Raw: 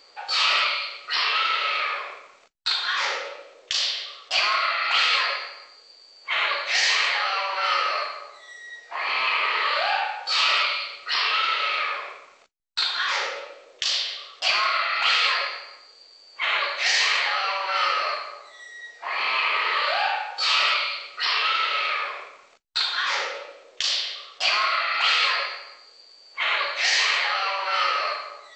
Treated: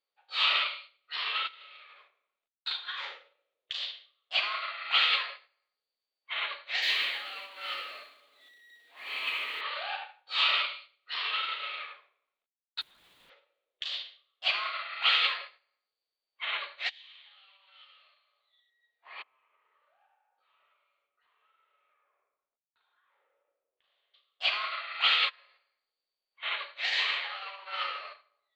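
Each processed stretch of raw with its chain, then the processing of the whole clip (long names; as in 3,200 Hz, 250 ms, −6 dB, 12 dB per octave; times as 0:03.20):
0:01.47–0:02.08: high-shelf EQ 6,400 Hz +10 dB + downward compressor 12 to 1, threshold −26 dBFS
0:06.82–0:09.61: converter with a step at zero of −26 dBFS + Butterworth high-pass 240 Hz 96 dB per octave + parametric band 1,000 Hz −8 dB 1.3 octaves
0:12.81–0:13.30: high-shelf EQ 2,900 Hz −9 dB + wrap-around overflow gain 27 dB
0:16.89–0:18.70: high-pass filter 440 Hz + parametric band 3,400 Hz +14 dB 0.74 octaves + downward compressor 3 to 1, threshold −36 dBFS
0:19.22–0:24.14: low-pass filter 1,300 Hz + downward compressor 2.5 to 1, threshold −38 dBFS
0:25.29–0:26.43: downward compressor 5 to 1, threshold −30 dBFS + flutter between parallel walls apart 8.3 metres, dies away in 0.37 s
whole clip: high shelf with overshoot 4,500 Hz −7.5 dB, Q 3; expander for the loud parts 2.5 to 1, over −37 dBFS; level −5 dB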